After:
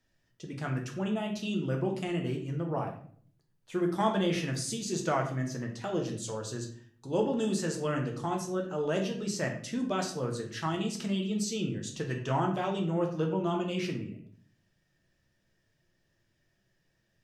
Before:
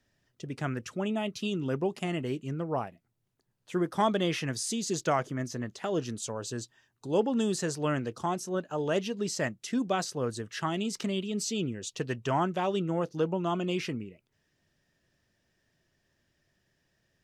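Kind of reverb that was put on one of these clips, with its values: simulated room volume 68 m³, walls mixed, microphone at 0.66 m; trim -4 dB

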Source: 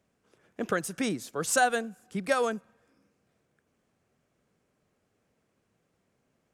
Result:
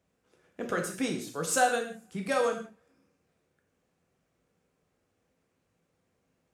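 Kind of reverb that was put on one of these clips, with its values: gated-style reverb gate 200 ms falling, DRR 1.5 dB; trim -3.5 dB

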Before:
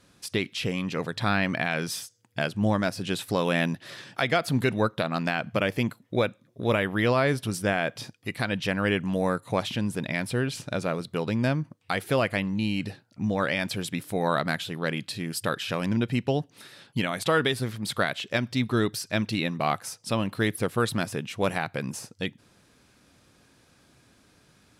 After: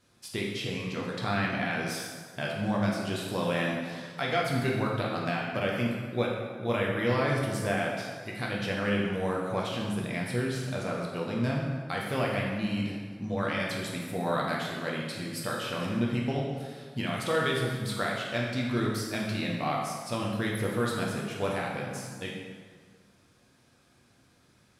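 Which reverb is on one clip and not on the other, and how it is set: plate-style reverb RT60 1.7 s, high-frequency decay 0.7×, DRR -3 dB; trim -8 dB

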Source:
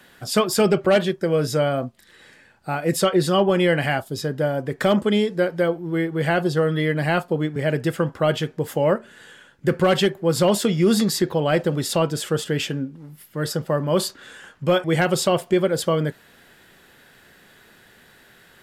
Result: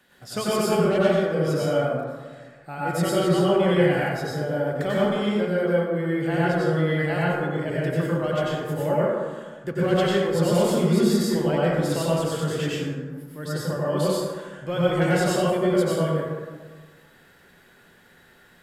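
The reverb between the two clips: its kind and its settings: plate-style reverb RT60 1.5 s, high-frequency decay 0.4×, pre-delay 80 ms, DRR -7.5 dB; trim -11 dB

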